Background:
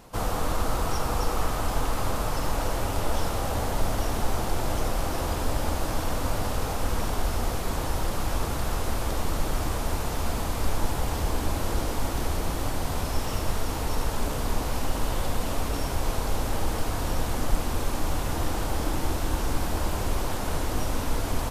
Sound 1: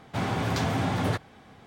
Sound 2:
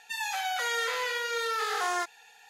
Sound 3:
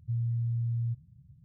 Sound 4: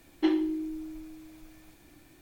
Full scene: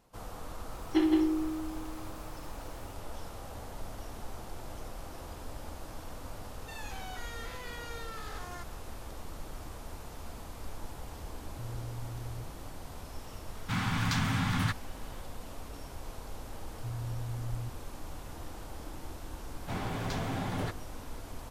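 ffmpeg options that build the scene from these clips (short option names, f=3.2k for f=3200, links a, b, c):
-filter_complex "[3:a]asplit=2[a][b];[1:a]asplit=2[c][d];[0:a]volume=-16dB[e];[4:a]aecho=1:1:61.22|166.2:0.282|0.631[f];[2:a]alimiter=level_in=2dB:limit=-24dB:level=0:latency=1:release=71,volume=-2dB[g];[a]highpass=f=190:t=q:w=4.9[h];[c]firequalizer=gain_entry='entry(240,0);entry(440,-28);entry(830,-5);entry(1200,2)':delay=0.05:min_phase=1[i];[f]atrim=end=2.21,asetpts=PTS-STARTPTS,volume=-1.5dB,afade=t=in:d=0.004:c=hsin,afade=t=out:st=2.206:d=0.004:c=hsin,adelay=720[j];[g]atrim=end=2.49,asetpts=PTS-STARTPTS,volume=-11dB,afade=t=in:d=0.004:c=hsin,afade=t=out:st=2.486:d=0.004:c=hsin,adelay=290178S[k];[h]atrim=end=1.44,asetpts=PTS-STARTPTS,volume=-7dB,afade=t=in:d=0.004:c=hsin,afade=t=out:st=1.436:d=0.004:c=hsin,adelay=11500[l];[i]atrim=end=1.66,asetpts=PTS-STARTPTS,volume=-2dB,afade=t=in:d=0.004:c=hsin,afade=t=out:st=1.656:d=0.004:c=hsin,adelay=13550[m];[b]atrim=end=1.44,asetpts=PTS-STARTPTS,volume=-7.5dB,afade=t=in:d=0.004:c=hsin,afade=t=out:st=1.436:d=0.004:c=hsin,adelay=16750[n];[d]atrim=end=1.66,asetpts=PTS-STARTPTS,volume=-8dB,afade=t=in:d=0.004:c=hsin,afade=t=out:st=1.656:d=0.004:c=hsin,adelay=19540[o];[e][j][k][l][m][n][o]amix=inputs=7:normalize=0"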